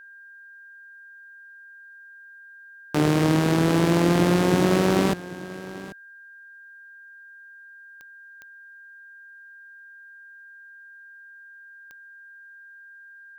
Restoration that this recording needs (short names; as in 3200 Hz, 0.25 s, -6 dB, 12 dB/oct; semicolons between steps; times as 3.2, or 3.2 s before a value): de-click; notch 1600 Hz, Q 30; inverse comb 0.788 s -17 dB